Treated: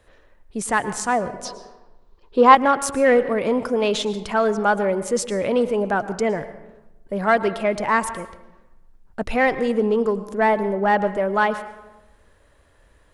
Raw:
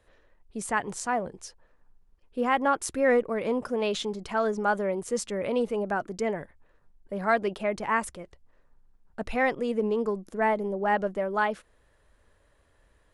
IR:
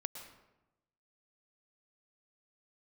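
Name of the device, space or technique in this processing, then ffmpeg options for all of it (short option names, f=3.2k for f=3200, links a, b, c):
saturated reverb return: -filter_complex "[0:a]asplit=2[a][b];[1:a]atrim=start_sample=2205[c];[b][c]afir=irnorm=-1:irlink=0,asoftclip=type=tanh:threshold=-21.5dB,volume=-1dB[d];[a][d]amix=inputs=2:normalize=0,asettb=1/sr,asplit=3[e][f][g];[e]atrim=end=1.454[h];[f]atrim=start=1.45:end=2.55,asetpts=PTS-STARTPTS,afade=t=in:d=0.004:c=qsin,afade=t=out:st=1.096:d=0.004:c=qsin,equalizer=f=400:t=o:w=0.67:g=11,equalizer=f=1k:t=o:w=0.67:g=11,equalizer=f=4k:t=o:w=0.67:g=11,equalizer=f=10k:t=o:w=0.67:g=-8[i];[g]atrim=start=2.546[j];[h][i]acrossfade=d=0.004:c1=hsin:c2=qsin[k];[k][j]acrossfade=d=0.004:c1=qsin:c2=hsin,volume=3dB"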